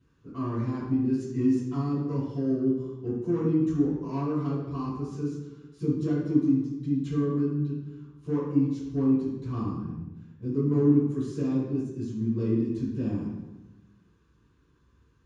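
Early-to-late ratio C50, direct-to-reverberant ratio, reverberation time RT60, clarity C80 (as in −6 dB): 0.0 dB, −16.0 dB, 1.1 s, 3.0 dB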